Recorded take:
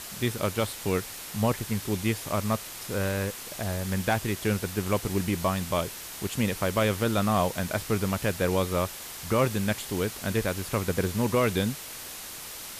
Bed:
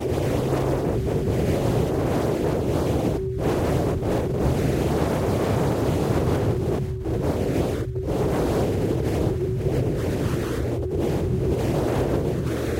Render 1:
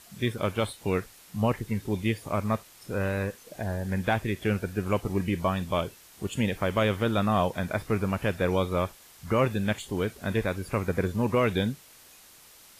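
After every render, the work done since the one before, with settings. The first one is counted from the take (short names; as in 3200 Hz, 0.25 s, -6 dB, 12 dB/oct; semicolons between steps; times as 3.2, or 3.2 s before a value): noise print and reduce 13 dB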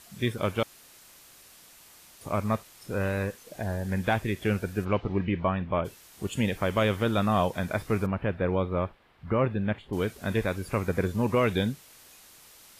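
0.63–2.21 room tone; 4.84–5.84 LPF 4500 Hz -> 2200 Hz 24 dB/oct; 8.06–9.93 air absorption 460 m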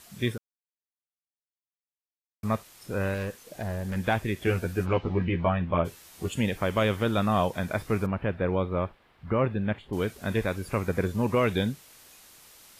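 0.38–2.43 mute; 3.14–3.96 hard clip -27.5 dBFS; 4.46–6.33 doubler 12 ms -3 dB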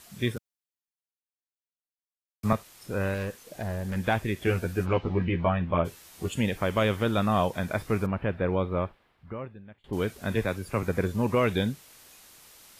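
0.36–2.53 three-band expander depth 40%; 8.8–9.84 fade out quadratic, to -22.5 dB; 10.35–10.83 three-band expander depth 40%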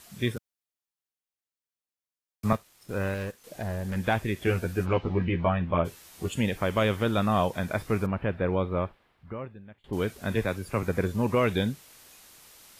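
2.53–3.44 G.711 law mismatch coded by A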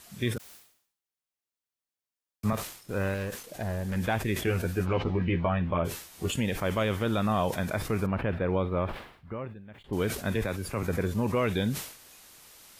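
limiter -17.5 dBFS, peak gain reduction 9 dB; sustainer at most 93 dB/s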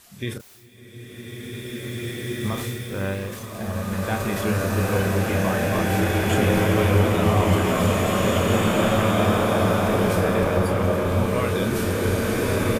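doubler 31 ms -7.5 dB; bloom reverb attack 2.31 s, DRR -8.5 dB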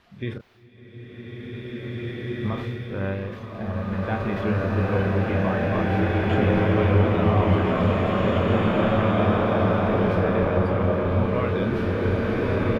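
air absorption 330 m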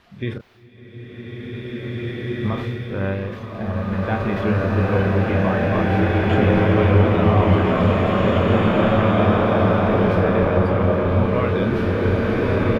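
gain +4 dB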